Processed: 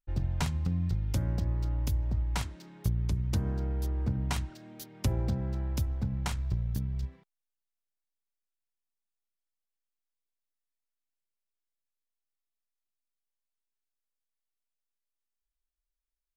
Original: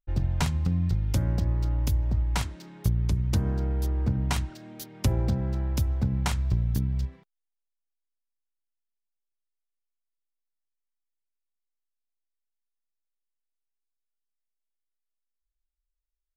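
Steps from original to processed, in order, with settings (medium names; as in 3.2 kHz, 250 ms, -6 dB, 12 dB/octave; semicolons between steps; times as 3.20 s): 5.85–7.03 s: partial rectifier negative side -3 dB; trim -4.5 dB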